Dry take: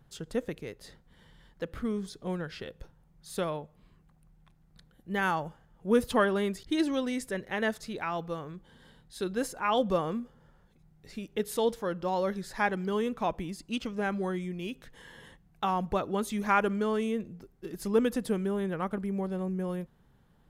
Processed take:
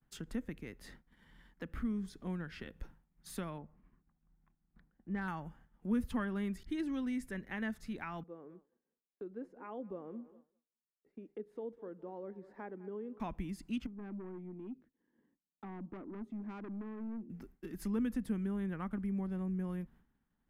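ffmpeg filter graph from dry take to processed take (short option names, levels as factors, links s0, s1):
-filter_complex "[0:a]asettb=1/sr,asplit=3[s0][s1][s2];[s0]atrim=end=3.584[s3];[s1]atrim=start=3.58:end=5.28,asetpts=PTS-STARTPTS,afade=t=in:d=0.004:c=qsin,afade=t=out:st=1.696:d=0.004:c=qsin,lowpass=1600,asoftclip=type=hard:threshold=0.0631[s4];[s2]atrim=start=5.276[s5];[s3][s4]acrossfade=d=0.004:c1=hsin:c2=qsin[s6];[s6][s5]acrossfade=d=0.004:c1=qsin:c2=hsin,asettb=1/sr,asplit=3[s7][s8][s9];[s7]atrim=end=8.234[s10];[s8]atrim=start=8.23:end=13.2,asetpts=PTS-STARTPTS,afade=t=in:d=0.004:c=qsin,afade=t=out:st=4.966:d=0.004:c=qsin,agate=range=0.0224:threshold=0.00141:ratio=3:release=100:detection=peak,bandpass=f=440:t=q:w=2.7,aecho=1:1:201|402|603:0.106|0.0413|0.0161,atrim=end_sample=219177[s11];[s9]atrim=start=13.196[s12];[s10][s11]acrossfade=d=0.004:c1=hsin:c2=qsin[s13];[s13][s12]acrossfade=d=0.004:c1=qsin:c2=hsin,asettb=1/sr,asplit=3[s14][s15][s16];[s14]atrim=end=13.864[s17];[s15]atrim=start=13.86:end=17.3,asetpts=PTS-STARTPTS,afade=t=in:d=0.004:c=qsin,afade=t=out:st=3.436:d=0.004:c=qsin,bandpass=f=300:t=q:w=2.2,aeval=exprs='(tanh(70.8*val(0)+0.05)-tanh(0.05))/70.8':c=same[s18];[s16]atrim=start=17.296[s19];[s17][s18]acrossfade=d=0.004:c1=hsin:c2=qsin[s20];[s20][s19]acrossfade=d=0.004:c1=qsin:c2=hsin,agate=range=0.0224:threshold=0.00282:ratio=3:detection=peak,equalizer=f=125:t=o:w=1:g=-9,equalizer=f=250:t=o:w=1:g=7,equalizer=f=500:t=o:w=1:g=-8,equalizer=f=2000:t=o:w=1:g=4,equalizer=f=4000:t=o:w=1:g=-6,equalizer=f=8000:t=o:w=1:g=-4,acrossover=split=160[s21][s22];[s22]acompressor=threshold=0.00224:ratio=2[s23];[s21][s23]amix=inputs=2:normalize=0,volume=1.33"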